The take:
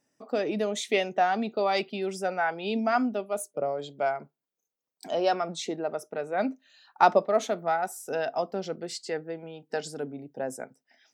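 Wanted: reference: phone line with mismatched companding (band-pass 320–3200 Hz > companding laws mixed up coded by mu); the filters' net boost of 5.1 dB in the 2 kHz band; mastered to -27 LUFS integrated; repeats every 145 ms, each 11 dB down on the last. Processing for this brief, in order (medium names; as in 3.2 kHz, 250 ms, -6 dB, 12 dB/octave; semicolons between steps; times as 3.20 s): band-pass 320–3200 Hz; peaking EQ 2 kHz +8 dB; feedback delay 145 ms, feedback 28%, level -11 dB; companding laws mixed up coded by mu; trim +0.5 dB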